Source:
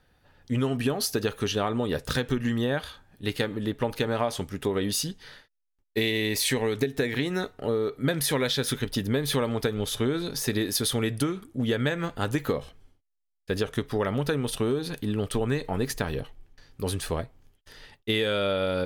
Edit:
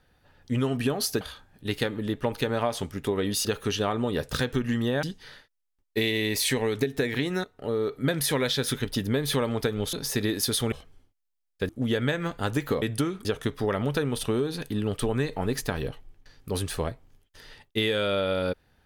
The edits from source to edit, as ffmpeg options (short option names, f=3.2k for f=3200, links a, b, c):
-filter_complex "[0:a]asplit=10[a][b][c][d][e][f][g][h][i][j];[a]atrim=end=1.212[k];[b]atrim=start=2.788:end=5.032[l];[c]atrim=start=1.208:end=2.792[m];[d]atrim=start=5.028:end=7.44,asetpts=PTS-STARTPTS,afade=t=out:st=2.408:d=0.004:c=hsin:silence=0.16788[n];[e]atrim=start=7.44:end=9.932,asetpts=PTS-STARTPTS,afade=t=in:d=0.36:silence=0.16788[o];[f]atrim=start=10.248:end=11.042[p];[g]atrim=start=12.598:end=13.572[q];[h]atrim=start=11.468:end=12.602[r];[i]atrim=start=11.038:end=11.472[s];[j]atrim=start=13.568[t];[k][l]acrossfade=d=0.004:c1=hsin:c2=hsin[u];[u][m]acrossfade=d=0.004:c1=hsin:c2=hsin[v];[n][o]concat=n=2:v=0:a=1[w];[v][w]acrossfade=d=0.004:c1=hsin:c2=hsin[x];[x][p]acrossfade=d=0.004:c1=hsin:c2=hsin[y];[y][q]acrossfade=d=0.004:c1=hsin:c2=hsin[z];[z][r]acrossfade=d=0.004:c1=hsin:c2=hsin[aa];[aa][s]acrossfade=d=0.004:c1=hsin:c2=hsin[ab];[ab][t]acrossfade=d=0.004:c1=hsin:c2=hsin"